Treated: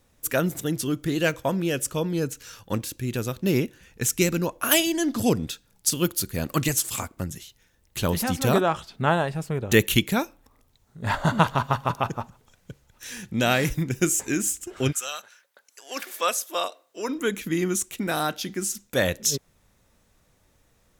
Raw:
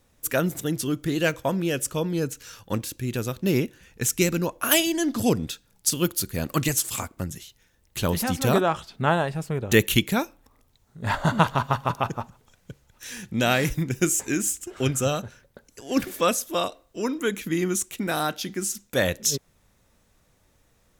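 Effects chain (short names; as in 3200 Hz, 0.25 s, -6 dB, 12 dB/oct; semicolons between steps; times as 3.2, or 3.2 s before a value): 14.91–17.08 HPF 1500 Hz -> 390 Hz 12 dB/oct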